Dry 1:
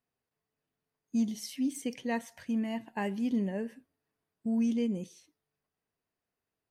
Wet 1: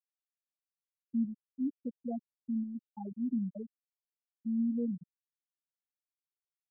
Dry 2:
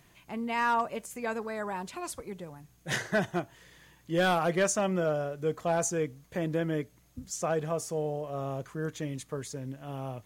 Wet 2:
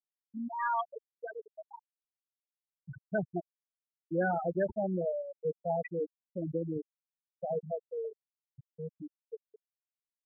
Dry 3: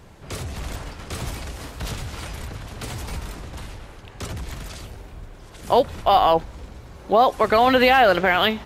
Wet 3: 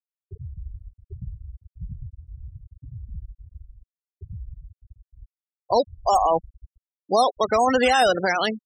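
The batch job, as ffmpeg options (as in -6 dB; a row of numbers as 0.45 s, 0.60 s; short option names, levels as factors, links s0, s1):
-af "acrusher=samples=8:mix=1:aa=0.000001:lfo=1:lforange=4.8:lforate=1.4,afftfilt=real='re*gte(hypot(re,im),0.178)':imag='im*gte(hypot(re,im),0.178)':win_size=1024:overlap=0.75,volume=0.75"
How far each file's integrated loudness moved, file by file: -3.5 LU, -4.0 LU, -1.5 LU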